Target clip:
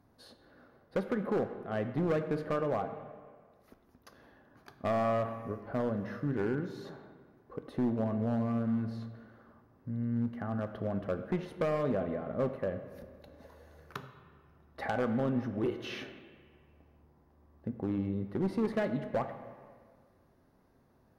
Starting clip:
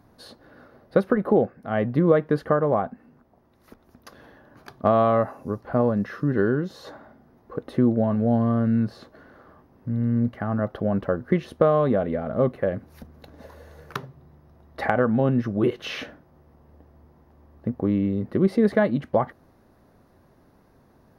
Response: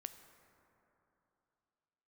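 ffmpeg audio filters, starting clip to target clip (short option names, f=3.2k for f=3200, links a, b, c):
-filter_complex "[0:a]volume=15dB,asoftclip=hard,volume=-15dB[a];[1:a]atrim=start_sample=2205,asetrate=79380,aresample=44100[b];[a][b]afir=irnorm=-1:irlink=0"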